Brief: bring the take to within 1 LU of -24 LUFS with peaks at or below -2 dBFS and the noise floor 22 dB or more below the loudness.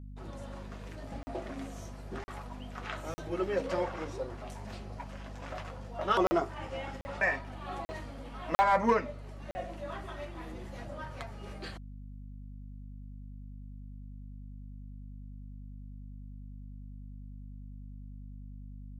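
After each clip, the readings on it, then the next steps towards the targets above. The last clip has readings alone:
dropouts 8; longest dropout 40 ms; hum 50 Hz; highest harmonic 250 Hz; hum level -43 dBFS; loudness -35.5 LUFS; peak level -16.0 dBFS; loudness target -24.0 LUFS
-> interpolate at 1.23/2.24/3.14/6.27/7.01/7.85/8.55/9.51 s, 40 ms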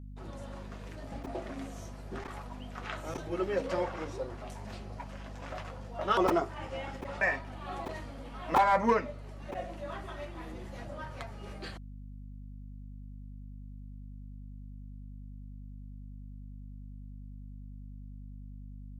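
dropouts 0; hum 50 Hz; highest harmonic 250 Hz; hum level -43 dBFS
-> de-hum 50 Hz, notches 5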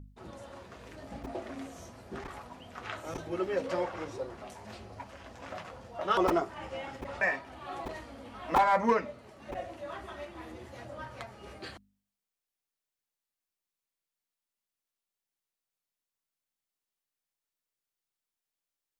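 hum not found; loudness -34.0 LUFS; peak level -11.0 dBFS; loudness target -24.0 LUFS
-> trim +10 dB; peak limiter -2 dBFS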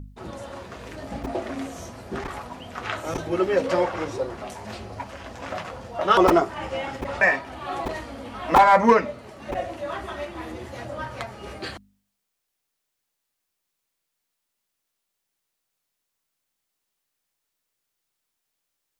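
loudness -24.0 LUFS; peak level -2.0 dBFS; noise floor -80 dBFS

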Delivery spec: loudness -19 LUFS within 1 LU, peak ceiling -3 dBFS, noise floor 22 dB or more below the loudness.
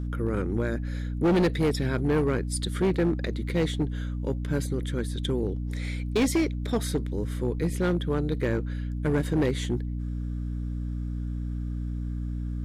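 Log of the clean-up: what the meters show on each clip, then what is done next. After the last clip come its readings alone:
clipped samples 1.7%; clipping level -18.5 dBFS; hum 60 Hz; highest harmonic 300 Hz; hum level -29 dBFS; loudness -28.5 LUFS; peak level -18.5 dBFS; loudness target -19.0 LUFS
-> clip repair -18.5 dBFS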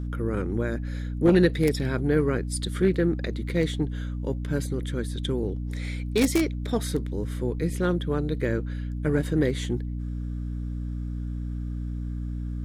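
clipped samples 0.0%; hum 60 Hz; highest harmonic 300 Hz; hum level -28 dBFS
-> de-hum 60 Hz, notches 5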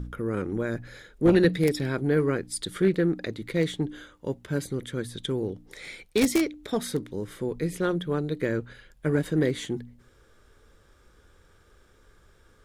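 hum not found; loudness -27.5 LUFS; peak level -9.0 dBFS; loudness target -19.0 LUFS
-> trim +8.5 dB; peak limiter -3 dBFS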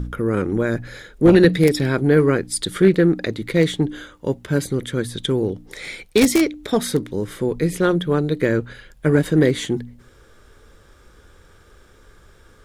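loudness -19.5 LUFS; peak level -3.0 dBFS; noise floor -51 dBFS

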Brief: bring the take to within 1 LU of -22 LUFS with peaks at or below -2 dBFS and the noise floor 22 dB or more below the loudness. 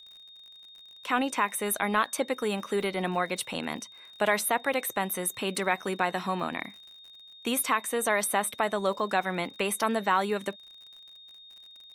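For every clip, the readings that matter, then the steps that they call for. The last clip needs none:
tick rate 55 per s; steady tone 3.7 kHz; tone level -48 dBFS; loudness -28.5 LUFS; peak level -11.0 dBFS; loudness target -22.0 LUFS
-> de-click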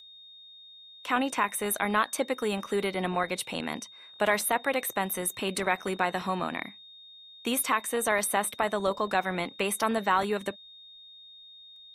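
tick rate 0.25 per s; steady tone 3.7 kHz; tone level -48 dBFS
-> band-stop 3.7 kHz, Q 30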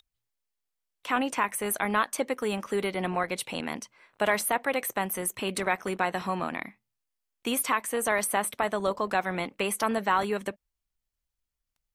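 steady tone not found; loudness -29.0 LUFS; peak level -11.0 dBFS; loudness target -22.0 LUFS
-> trim +7 dB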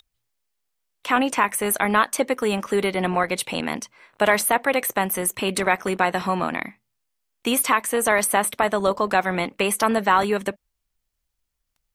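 loudness -22.0 LUFS; peak level -4.0 dBFS; noise floor -78 dBFS

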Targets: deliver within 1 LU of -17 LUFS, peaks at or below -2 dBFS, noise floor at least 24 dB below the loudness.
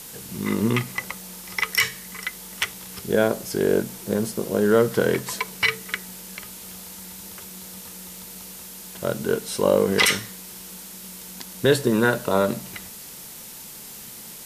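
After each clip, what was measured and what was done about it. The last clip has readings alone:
noise floor -40 dBFS; noise floor target -48 dBFS; loudness -23.5 LUFS; peak level -4.5 dBFS; loudness target -17.0 LUFS
-> noise reduction 8 dB, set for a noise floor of -40 dBFS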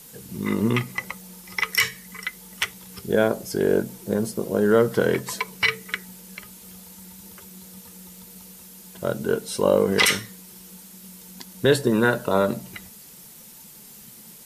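noise floor -46 dBFS; noise floor target -47 dBFS
-> noise reduction 6 dB, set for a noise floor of -46 dBFS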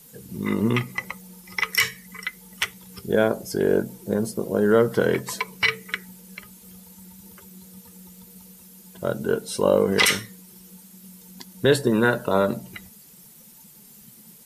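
noise floor -49 dBFS; loudness -23.5 LUFS; peak level -5.0 dBFS; loudness target -17.0 LUFS
-> trim +6.5 dB; peak limiter -2 dBFS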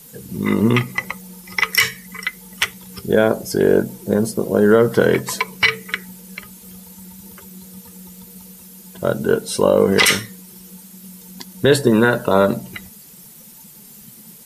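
loudness -17.5 LUFS; peak level -2.0 dBFS; noise floor -43 dBFS

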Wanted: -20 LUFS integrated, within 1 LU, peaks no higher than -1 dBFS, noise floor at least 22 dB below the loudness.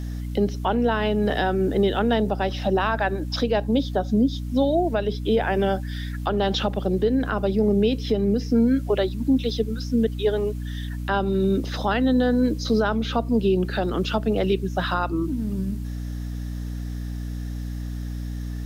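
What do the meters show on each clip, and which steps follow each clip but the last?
hum 60 Hz; highest harmonic 300 Hz; hum level -28 dBFS; loudness -24.0 LUFS; peak level -10.5 dBFS; loudness target -20.0 LUFS
-> de-hum 60 Hz, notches 5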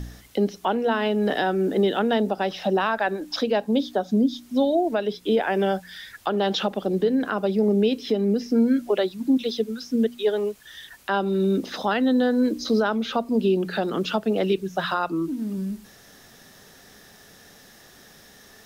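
hum not found; loudness -24.0 LUFS; peak level -11.0 dBFS; loudness target -20.0 LUFS
-> trim +4 dB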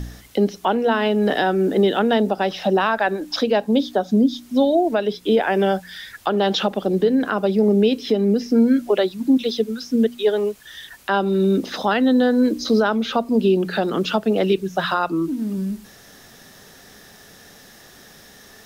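loudness -20.0 LUFS; peak level -7.0 dBFS; noise floor -47 dBFS

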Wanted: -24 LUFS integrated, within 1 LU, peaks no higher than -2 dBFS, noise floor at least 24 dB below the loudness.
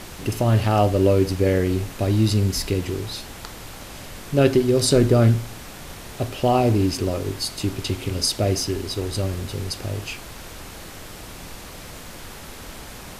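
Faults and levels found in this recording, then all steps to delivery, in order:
noise floor -39 dBFS; noise floor target -46 dBFS; loudness -21.5 LUFS; peak level -4.0 dBFS; loudness target -24.0 LUFS
-> noise print and reduce 7 dB; trim -2.5 dB

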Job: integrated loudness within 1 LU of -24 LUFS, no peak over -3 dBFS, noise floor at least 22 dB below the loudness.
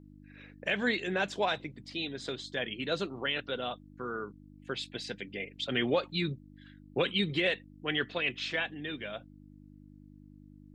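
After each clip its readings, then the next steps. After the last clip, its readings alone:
hum 50 Hz; highest harmonic 300 Hz; hum level -52 dBFS; loudness -33.5 LUFS; peak level -15.5 dBFS; loudness target -24.0 LUFS
-> de-hum 50 Hz, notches 6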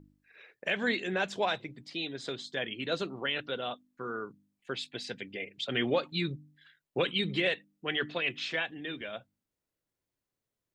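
hum not found; loudness -33.5 LUFS; peak level -16.0 dBFS; loudness target -24.0 LUFS
-> trim +9.5 dB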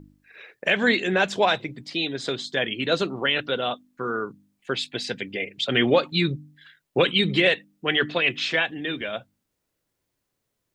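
loudness -24.0 LUFS; peak level -6.5 dBFS; noise floor -79 dBFS

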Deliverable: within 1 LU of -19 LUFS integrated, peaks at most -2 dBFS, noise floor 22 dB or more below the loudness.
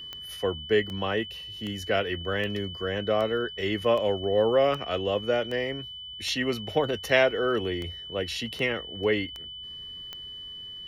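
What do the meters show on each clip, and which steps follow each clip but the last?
clicks found 14; steady tone 3 kHz; tone level -38 dBFS; loudness -28.0 LUFS; peak level -8.0 dBFS; loudness target -19.0 LUFS
-> de-click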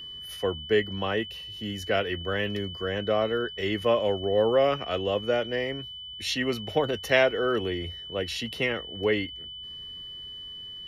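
clicks found 0; steady tone 3 kHz; tone level -38 dBFS
-> band-stop 3 kHz, Q 30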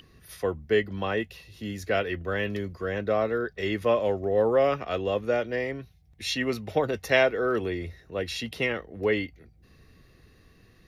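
steady tone not found; loudness -27.5 LUFS; peak level -7.5 dBFS; loudness target -19.0 LUFS
-> trim +8.5 dB; peak limiter -2 dBFS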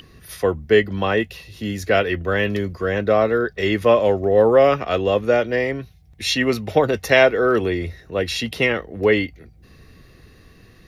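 loudness -19.0 LUFS; peak level -2.0 dBFS; noise floor -50 dBFS

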